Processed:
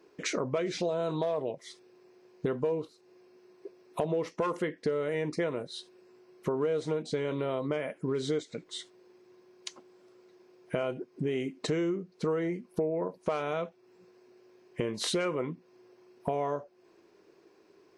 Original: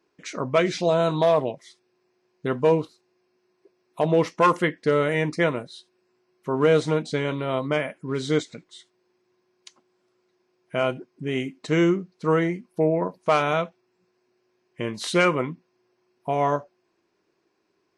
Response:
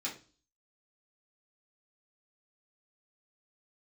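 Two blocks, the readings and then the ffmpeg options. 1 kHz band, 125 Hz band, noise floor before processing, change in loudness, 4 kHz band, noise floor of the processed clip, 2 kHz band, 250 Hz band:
−12.0 dB, −9.5 dB, −72 dBFS, −9.0 dB, −6.0 dB, −63 dBFS, −12.0 dB, −8.0 dB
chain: -filter_complex "[0:a]equalizer=frequency=440:width=1.5:gain=7.5,asplit=2[link_01][link_02];[link_02]alimiter=limit=-18.5dB:level=0:latency=1:release=29,volume=0dB[link_03];[link_01][link_03]amix=inputs=2:normalize=0,acompressor=threshold=-30dB:ratio=5"

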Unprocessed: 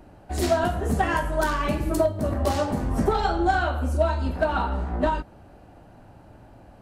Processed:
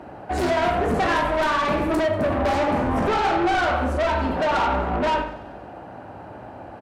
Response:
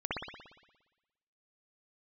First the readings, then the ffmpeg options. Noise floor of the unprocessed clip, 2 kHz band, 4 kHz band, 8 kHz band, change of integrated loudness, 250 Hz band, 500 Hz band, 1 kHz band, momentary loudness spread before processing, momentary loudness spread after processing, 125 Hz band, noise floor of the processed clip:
−50 dBFS, +4.5 dB, +5.0 dB, −3.0 dB, +3.0 dB, +2.5 dB, +3.0 dB, +4.5 dB, 4 LU, 19 LU, −2.5 dB, −40 dBFS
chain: -filter_complex "[0:a]highpass=frequency=54:width=0.5412,highpass=frequency=54:width=1.3066,asplit=2[link_01][link_02];[link_02]highpass=frequency=720:poles=1,volume=16dB,asoftclip=type=tanh:threshold=-9.5dB[link_03];[link_01][link_03]amix=inputs=2:normalize=0,lowpass=frequency=1200:poles=1,volume=-6dB,asoftclip=type=tanh:threshold=-25.5dB,aecho=1:1:95|190|285|380|475|570:0.133|0.08|0.048|0.0288|0.0173|0.0104,asplit=2[link_04][link_05];[1:a]atrim=start_sample=2205,atrim=end_sample=6174,lowpass=3800[link_06];[link_05][link_06]afir=irnorm=-1:irlink=0,volume=-10dB[link_07];[link_04][link_07]amix=inputs=2:normalize=0,volume=4.5dB"

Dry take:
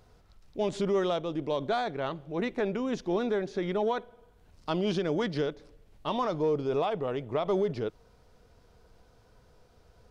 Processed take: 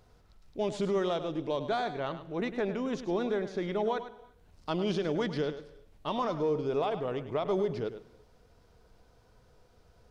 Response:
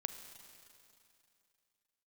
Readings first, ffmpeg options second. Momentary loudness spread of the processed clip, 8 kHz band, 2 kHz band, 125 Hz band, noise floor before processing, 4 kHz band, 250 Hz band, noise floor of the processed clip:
7 LU, can't be measured, −1.5 dB, −1.5 dB, −61 dBFS, −1.5 dB, −1.5 dB, −63 dBFS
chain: -filter_complex "[0:a]asplit=2[link_01][link_02];[1:a]atrim=start_sample=2205,afade=type=out:start_time=0.31:duration=0.01,atrim=end_sample=14112,adelay=103[link_03];[link_02][link_03]afir=irnorm=-1:irlink=0,volume=-10dB[link_04];[link_01][link_04]amix=inputs=2:normalize=0,volume=-2dB"

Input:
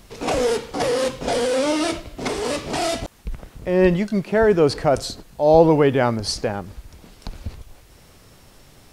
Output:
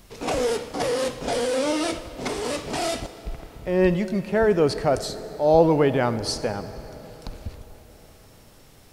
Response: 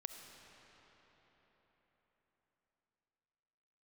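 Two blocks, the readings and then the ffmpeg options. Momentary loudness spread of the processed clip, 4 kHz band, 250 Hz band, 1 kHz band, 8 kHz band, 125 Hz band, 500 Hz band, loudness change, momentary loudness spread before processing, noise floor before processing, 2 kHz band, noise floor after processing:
20 LU, −3.0 dB, −3.5 dB, −3.5 dB, −2.5 dB, −3.0 dB, −3.5 dB, −3.5 dB, 20 LU, −50 dBFS, −3.5 dB, −51 dBFS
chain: -filter_complex "[0:a]asplit=2[link_01][link_02];[1:a]atrim=start_sample=2205,highshelf=frequency=9800:gain=10[link_03];[link_02][link_03]afir=irnorm=-1:irlink=0,volume=-1.5dB[link_04];[link_01][link_04]amix=inputs=2:normalize=0,volume=-7dB"

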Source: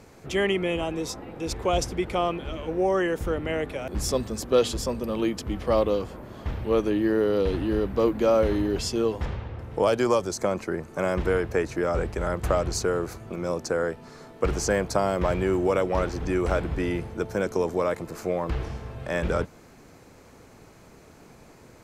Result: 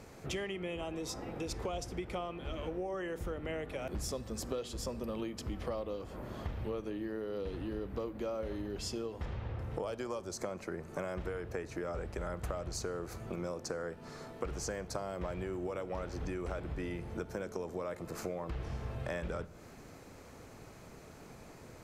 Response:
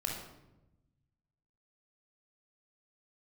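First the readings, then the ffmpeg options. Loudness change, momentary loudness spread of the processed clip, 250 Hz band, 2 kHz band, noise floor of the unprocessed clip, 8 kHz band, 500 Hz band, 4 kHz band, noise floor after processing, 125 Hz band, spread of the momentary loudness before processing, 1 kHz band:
−13.5 dB, 9 LU, −13.0 dB, −13.0 dB, −51 dBFS, −10.0 dB, −14.5 dB, −11.5 dB, −53 dBFS, −10.5 dB, 9 LU, −14.0 dB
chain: -filter_complex "[0:a]acompressor=threshold=-33dB:ratio=12,asplit=2[link_01][link_02];[1:a]atrim=start_sample=2205[link_03];[link_02][link_03]afir=irnorm=-1:irlink=0,volume=-16dB[link_04];[link_01][link_04]amix=inputs=2:normalize=0,volume=-3dB"

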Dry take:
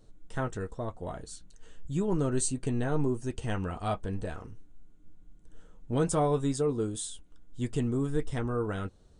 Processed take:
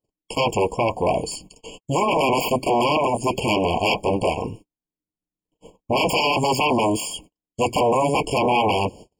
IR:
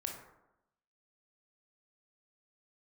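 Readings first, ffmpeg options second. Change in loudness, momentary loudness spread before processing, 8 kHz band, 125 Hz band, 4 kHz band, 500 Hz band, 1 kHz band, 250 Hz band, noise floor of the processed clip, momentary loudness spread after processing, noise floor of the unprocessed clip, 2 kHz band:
+10.5 dB, 13 LU, +5.5 dB, +2.5 dB, +20.5 dB, +11.5 dB, +18.0 dB, +6.5 dB, below −85 dBFS, 11 LU, −57 dBFS, +17.5 dB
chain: -filter_complex "[0:a]aeval=exprs='0.168*sin(PI/2*7.94*val(0)/0.168)':channel_layout=same,highpass=frequency=370:poles=1,acrossover=split=4200[link_01][link_02];[link_02]acompressor=threshold=-31dB:ratio=4:attack=1:release=60[link_03];[link_01][link_03]amix=inputs=2:normalize=0,agate=range=-46dB:threshold=-41dB:ratio=16:detection=peak,afftfilt=real='re*eq(mod(floor(b*sr/1024/1100),2),0)':imag='im*eq(mod(floor(b*sr/1024/1100),2),0)':win_size=1024:overlap=0.75,volume=3.5dB"

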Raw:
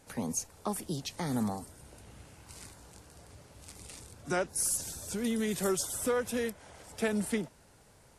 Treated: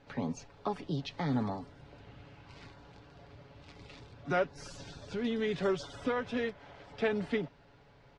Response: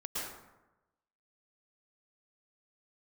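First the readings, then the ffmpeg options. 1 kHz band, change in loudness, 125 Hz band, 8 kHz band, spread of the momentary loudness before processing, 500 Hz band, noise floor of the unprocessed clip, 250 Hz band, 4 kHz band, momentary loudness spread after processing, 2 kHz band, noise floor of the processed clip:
+1.0 dB, −2.0 dB, +1.0 dB, −21.5 dB, 20 LU, +0.5 dB, −60 dBFS, −1.5 dB, −2.5 dB, 21 LU, +0.5 dB, −60 dBFS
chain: -af "lowpass=frequency=4000:width=0.5412,lowpass=frequency=4000:width=1.3066,aecho=1:1:7.1:0.46"

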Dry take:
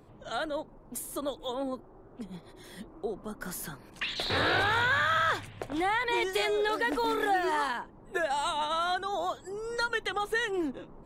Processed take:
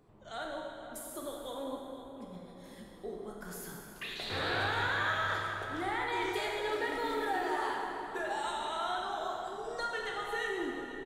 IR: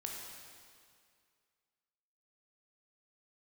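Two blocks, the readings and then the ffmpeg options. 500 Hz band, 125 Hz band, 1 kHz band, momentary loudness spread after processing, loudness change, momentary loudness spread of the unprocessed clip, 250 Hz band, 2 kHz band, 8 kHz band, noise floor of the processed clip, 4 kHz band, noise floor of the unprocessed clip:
−5.0 dB, −4.0 dB, −5.0 dB, 14 LU, −5.5 dB, 15 LU, −5.5 dB, −5.5 dB, −6.0 dB, −51 dBFS, −6.0 dB, −53 dBFS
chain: -filter_complex "[0:a]asplit=2[link_01][link_02];[link_02]adelay=494,lowpass=frequency=2100:poles=1,volume=-10.5dB,asplit=2[link_03][link_04];[link_04]adelay=494,lowpass=frequency=2100:poles=1,volume=0.54,asplit=2[link_05][link_06];[link_06]adelay=494,lowpass=frequency=2100:poles=1,volume=0.54,asplit=2[link_07][link_08];[link_08]adelay=494,lowpass=frequency=2100:poles=1,volume=0.54,asplit=2[link_09][link_10];[link_10]adelay=494,lowpass=frequency=2100:poles=1,volume=0.54,asplit=2[link_11][link_12];[link_12]adelay=494,lowpass=frequency=2100:poles=1,volume=0.54[link_13];[link_01][link_03][link_05][link_07][link_09][link_11][link_13]amix=inputs=7:normalize=0[link_14];[1:a]atrim=start_sample=2205[link_15];[link_14][link_15]afir=irnorm=-1:irlink=0,volume=-5dB"

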